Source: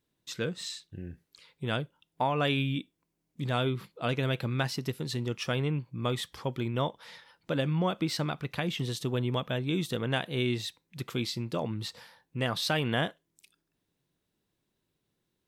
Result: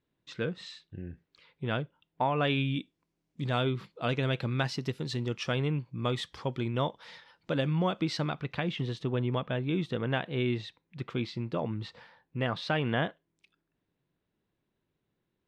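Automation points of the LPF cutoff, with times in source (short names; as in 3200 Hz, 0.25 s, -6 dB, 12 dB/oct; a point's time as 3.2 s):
2.32 s 3000 Hz
2.78 s 5900 Hz
7.94 s 5900 Hz
9.01 s 2700 Hz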